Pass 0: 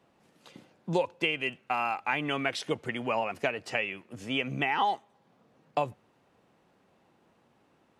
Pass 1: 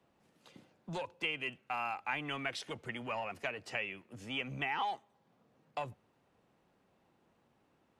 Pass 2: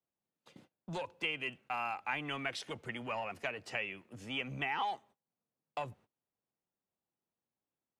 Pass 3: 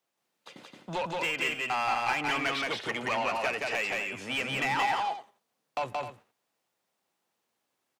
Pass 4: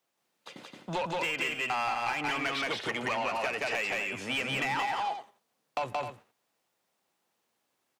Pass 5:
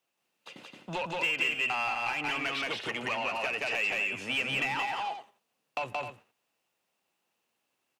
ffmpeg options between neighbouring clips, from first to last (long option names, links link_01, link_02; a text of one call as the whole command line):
ffmpeg -i in.wav -filter_complex "[0:a]lowshelf=frequency=68:gain=8,acrossover=split=120|790[link_01][link_02][link_03];[link_02]asoftclip=type=tanh:threshold=-35dB[link_04];[link_01][link_04][link_03]amix=inputs=3:normalize=0,volume=-6.5dB" out.wav
ffmpeg -i in.wav -af "agate=range=-24dB:threshold=-60dB:ratio=16:detection=peak" out.wav
ffmpeg -i in.wav -filter_complex "[0:a]acrossover=split=3400[link_01][link_02];[link_02]acompressor=threshold=-57dB:ratio=4:attack=1:release=60[link_03];[link_01][link_03]amix=inputs=2:normalize=0,asplit=2[link_04][link_05];[link_05]highpass=frequency=720:poles=1,volume=20dB,asoftclip=type=tanh:threshold=-21.5dB[link_06];[link_04][link_06]amix=inputs=2:normalize=0,lowpass=frequency=6100:poles=1,volume=-6dB,aecho=1:1:174.9|259.5:0.794|0.282" out.wav
ffmpeg -i in.wav -af "acompressor=threshold=-30dB:ratio=6,volume=2dB" out.wav
ffmpeg -i in.wav -af "equalizer=frequency=2700:width_type=o:width=0.26:gain=8.5,volume=-2.5dB" out.wav